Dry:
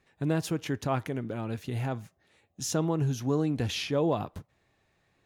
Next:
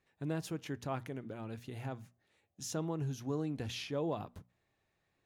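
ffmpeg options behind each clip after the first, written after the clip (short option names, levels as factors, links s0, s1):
-af "bandreject=f=60:t=h:w=6,bandreject=f=120:t=h:w=6,bandreject=f=180:t=h:w=6,bandreject=f=240:t=h:w=6,volume=0.355"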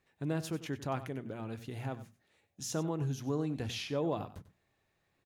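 -af "aecho=1:1:95:0.188,volume=1.33"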